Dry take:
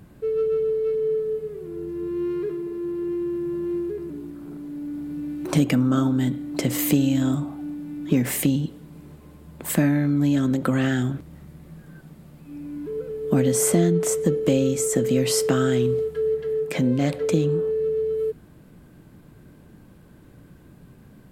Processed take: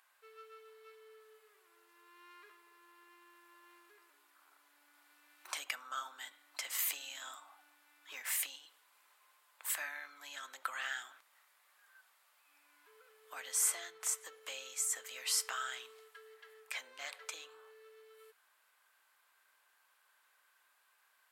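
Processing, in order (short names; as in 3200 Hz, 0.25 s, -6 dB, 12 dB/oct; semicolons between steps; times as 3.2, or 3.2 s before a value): HPF 1000 Hz 24 dB/oct; gain -8 dB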